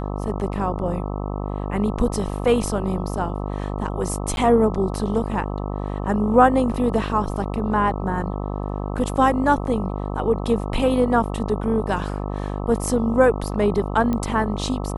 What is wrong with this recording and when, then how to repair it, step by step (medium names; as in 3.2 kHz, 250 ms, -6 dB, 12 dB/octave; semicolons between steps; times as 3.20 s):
buzz 50 Hz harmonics 26 -27 dBFS
4.36–4.37 s: dropout 11 ms
14.13 s: pop -13 dBFS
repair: de-click; de-hum 50 Hz, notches 26; interpolate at 4.36 s, 11 ms